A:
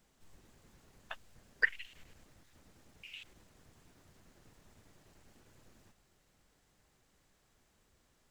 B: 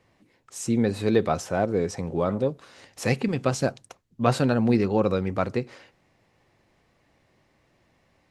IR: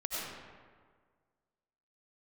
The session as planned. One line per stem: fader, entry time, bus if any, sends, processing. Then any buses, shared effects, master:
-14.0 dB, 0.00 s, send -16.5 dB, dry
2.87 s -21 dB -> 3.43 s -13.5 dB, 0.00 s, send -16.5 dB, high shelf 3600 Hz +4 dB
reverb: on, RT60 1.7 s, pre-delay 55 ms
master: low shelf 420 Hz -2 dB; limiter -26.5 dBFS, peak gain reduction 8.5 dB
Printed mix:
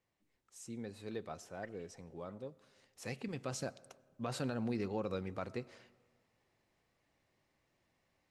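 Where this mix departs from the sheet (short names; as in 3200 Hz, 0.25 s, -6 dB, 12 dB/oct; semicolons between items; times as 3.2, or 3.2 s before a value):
stem A -14.0 dB -> -23.5 dB; reverb return -9.5 dB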